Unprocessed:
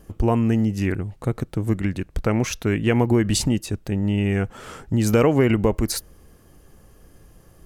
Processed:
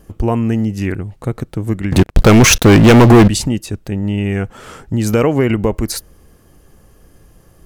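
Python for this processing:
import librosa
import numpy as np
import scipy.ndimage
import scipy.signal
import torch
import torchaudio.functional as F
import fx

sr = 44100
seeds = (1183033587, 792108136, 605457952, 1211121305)

y = fx.leveller(x, sr, passes=5, at=(1.92, 3.28))
y = y * 10.0 ** (3.5 / 20.0)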